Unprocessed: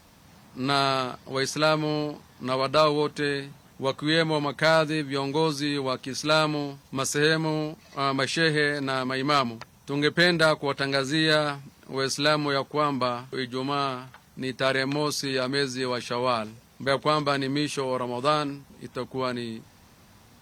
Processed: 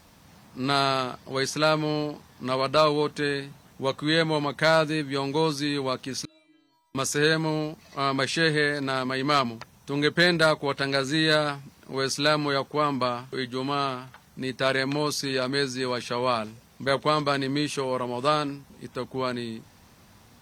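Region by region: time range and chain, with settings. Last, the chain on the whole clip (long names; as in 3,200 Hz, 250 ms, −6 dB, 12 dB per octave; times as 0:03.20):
0:06.25–0:06.95: downward compressor 16 to 1, threshold −33 dBFS + stiff-string resonator 320 Hz, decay 0.79 s, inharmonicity 0.002
whole clip: no processing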